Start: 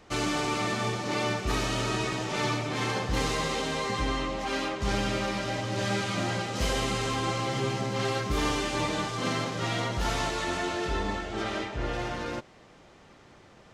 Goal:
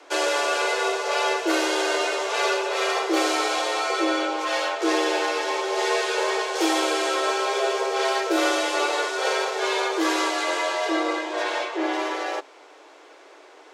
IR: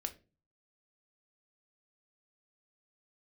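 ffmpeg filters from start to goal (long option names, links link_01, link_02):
-af "afreqshift=270,volume=5.5dB"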